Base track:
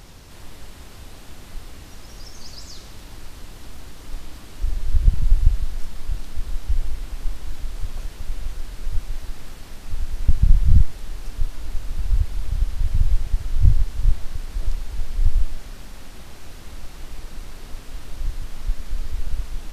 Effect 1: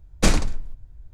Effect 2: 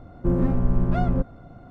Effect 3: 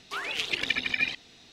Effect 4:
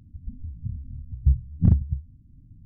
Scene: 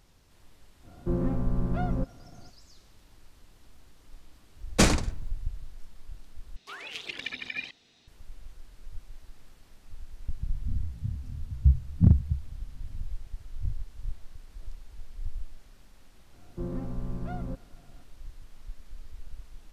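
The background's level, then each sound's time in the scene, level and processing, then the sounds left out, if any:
base track −17.5 dB
0:00.82: mix in 2 −6.5 dB, fades 0.05 s
0:04.56: mix in 1 −0.5 dB + high-pass filter 48 Hz
0:06.56: overwrite with 3 −8.5 dB
0:10.39: mix in 4 −1 dB
0:16.33: mix in 2 −13 dB

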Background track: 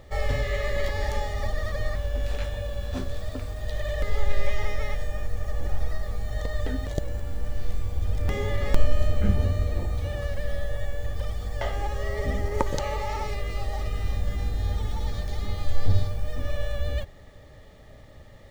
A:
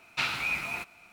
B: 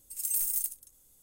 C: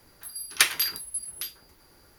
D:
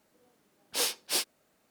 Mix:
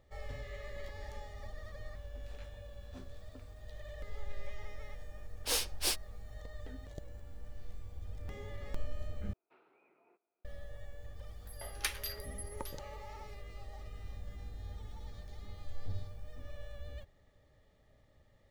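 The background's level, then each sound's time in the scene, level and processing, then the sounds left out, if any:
background track −18 dB
0:04.72: mix in D −3.5 dB
0:09.33: overwrite with A −14.5 dB + four-pole ladder band-pass 430 Hz, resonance 65%
0:11.24: mix in C −15.5 dB
not used: B

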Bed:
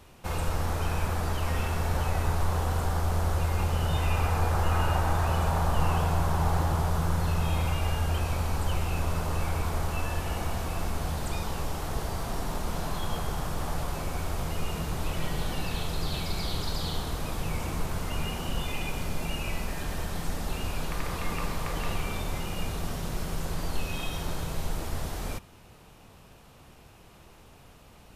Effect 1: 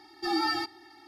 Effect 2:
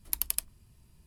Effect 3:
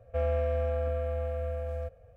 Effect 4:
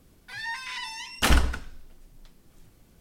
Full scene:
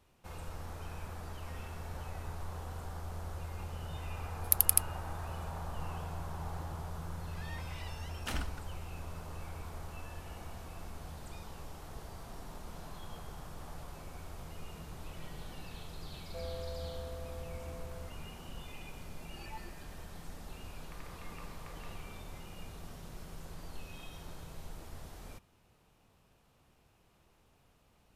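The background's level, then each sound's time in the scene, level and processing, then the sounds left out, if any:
bed −15 dB
0:04.39: mix in 2 −1.5 dB + parametric band 11,000 Hz +7.5 dB
0:07.04: mix in 4 −16.5 dB
0:16.20: mix in 3 −13.5 dB
0:19.10: mix in 1 −8.5 dB + step-sequenced resonator 8.4 Hz 140–1,200 Hz

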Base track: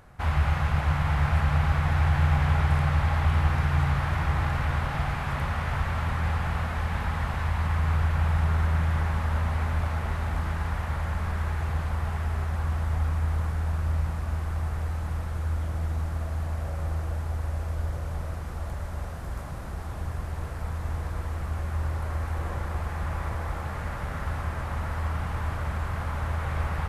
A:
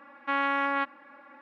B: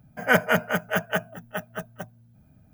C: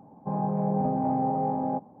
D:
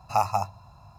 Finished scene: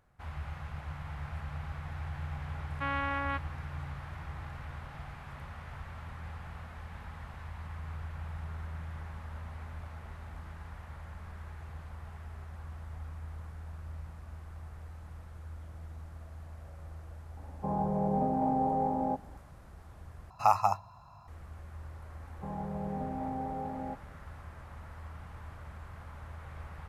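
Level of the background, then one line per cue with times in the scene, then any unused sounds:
base track −16.5 dB
0:02.53: mix in A −6.5 dB
0:17.37: mix in C −2 dB + low-shelf EQ 170 Hz −5.5 dB
0:20.30: overwrite with D −6 dB + parametric band 1,200 Hz +8 dB 1.3 octaves
0:22.16: mix in C −10.5 dB
not used: B

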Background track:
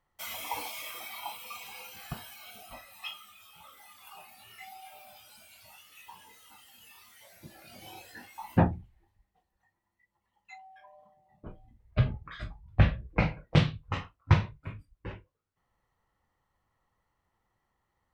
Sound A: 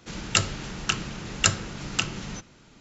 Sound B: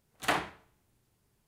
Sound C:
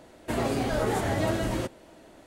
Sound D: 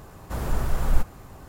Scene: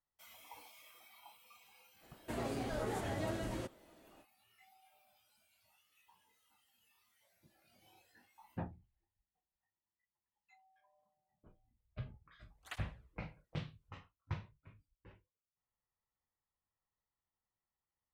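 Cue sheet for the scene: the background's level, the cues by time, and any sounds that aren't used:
background track −19.5 dB
0:02.00: mix in C −12 dB, fades 0.05 s
0:12.43: mix in B −14.5 dB + through-zero flanger with one copy inverted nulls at 1.5 Hz, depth 1.4 ms
not used: A, D

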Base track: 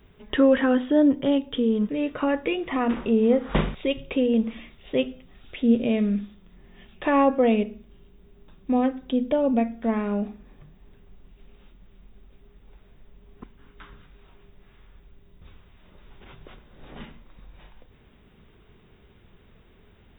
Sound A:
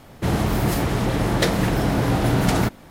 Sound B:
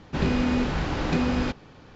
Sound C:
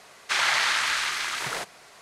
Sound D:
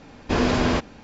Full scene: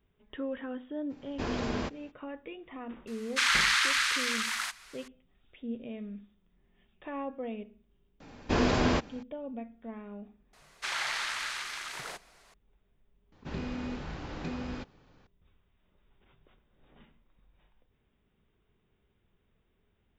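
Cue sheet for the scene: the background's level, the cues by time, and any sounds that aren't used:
base track −18 dB
0:01.09: mix in D −12.5 dB, fades 0.02 s
0:03.07: mix in C −1.5 dB + high-pass filter 1,100 Hz 24 dB per octave
0:08.20: mix in D −5 dB
0:10.53: mix in C −10 dB
0:13.32: mix in B −13 dB
not used: A

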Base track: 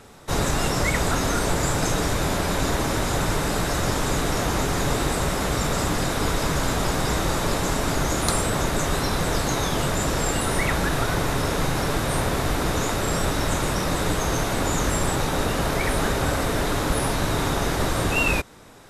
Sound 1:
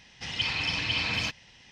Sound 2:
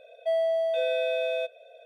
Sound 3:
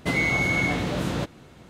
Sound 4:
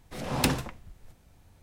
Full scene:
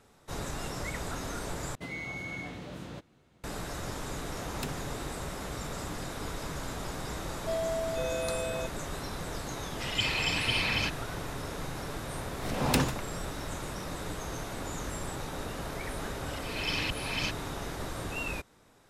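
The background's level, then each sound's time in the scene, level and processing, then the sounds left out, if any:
base track −14 dB
0:01.75: overwrite with 3 −15.5 dB
0:04.19: mix in 4 −14 dB
0:07.21: mix in 2 −7 dB
0:09.59: mix in 1 + high-shelf EQ 8,400 Hz −10 dB
0:12.30: mix in 4 −10.5 dB + boost into a limiter +11.5 dB
0:16.00: mix in 1 −2 dB + volume swells 350 ms

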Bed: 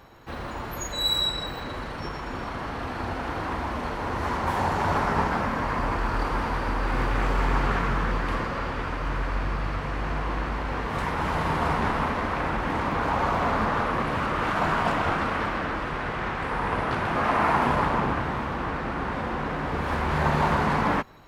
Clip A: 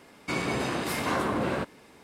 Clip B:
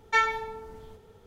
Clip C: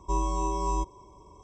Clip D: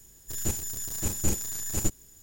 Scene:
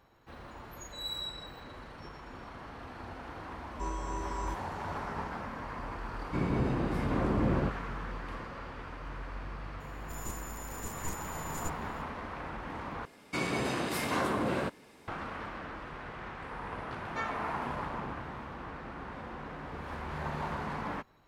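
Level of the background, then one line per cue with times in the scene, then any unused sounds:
bed −13.5 dB
0:03.71: mix in C −9 dB
0:06.05: mix in A −8.5 dB + spectral tilt −4.5 dB per octave
0:09.80: mix in D −13 dB
0:13.05: overwrite with A −3 dB
0:17.03: mix in B −15.5 dB

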